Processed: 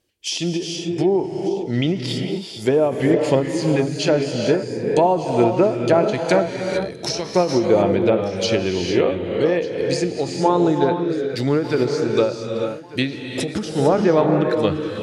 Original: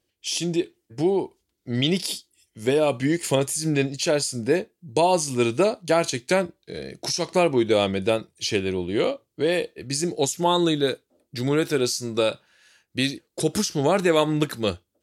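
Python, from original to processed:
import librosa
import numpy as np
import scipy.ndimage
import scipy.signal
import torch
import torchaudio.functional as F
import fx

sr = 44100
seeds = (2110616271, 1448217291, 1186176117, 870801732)

p1 = fx.env_lowpass_down(x, sr, base_hz=1200.0, full_db=-16.5)
p2 = p1 + fx.echo_feedback(p1, sr, ms=1193, feedback_pct=37, wet_db=-19.5, dry=0)
p3 = fx.rev_gated(p2, sr, seeds[0], gate_ms=480, shape='rising', drr_db=3.5)
p4 = fx.end_taper(p3, sr, db_per_s=130.0)
y = p4 * librosa.db_to_amplitude(4.0)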